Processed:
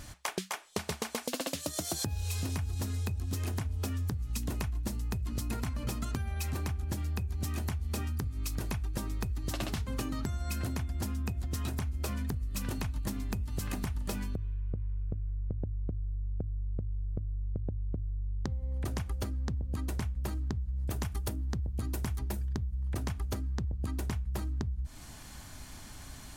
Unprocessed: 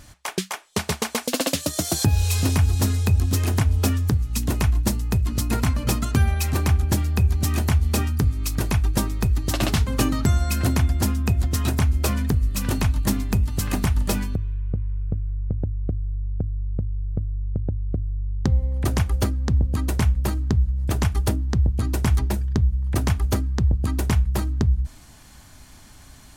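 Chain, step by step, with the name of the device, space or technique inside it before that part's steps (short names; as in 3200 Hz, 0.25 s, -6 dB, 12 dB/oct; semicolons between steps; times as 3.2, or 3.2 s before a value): 20.9–22.84 high shelf 11000 Hz +9.5 dB; serial compression, leveller first (compressor, threshold -20 dBFS, peak gain reduction 7 dB; compressor 5:1, threshold -32 dBFS, peak gain reduction 12 dB)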